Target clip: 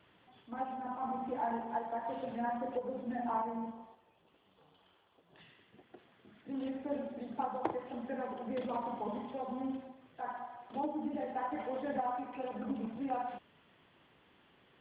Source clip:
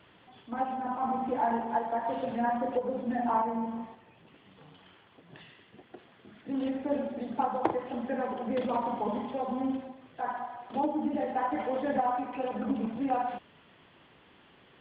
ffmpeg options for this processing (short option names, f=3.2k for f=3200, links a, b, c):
-filter_complex "[0:a]asettb=1/sr,asplit=3[a][b][c];[a]atrim=end=3.714[d];[b]atrim=start=3.71:end=5.38,asetpts=PTS-STARTPTS,afade=t=in:d=0.004:c=qsin,afade=t=out:st=1.666:d=0.004:c=qsin,equalizer=f=125:t=o:w=1:g=-10,equalizer=f=250:t=o:w=1:g=-6,equalizer=f=2k:t=o:w=1:g=-8[e];[c]atrim=start=5.376[f];[d][e]acrossfade=d=0.004:c1=hsin:c2=qsin[g];[g][f]acrossfade=d=0.004:c1=qsin:c2=hsin,volume=-7dB"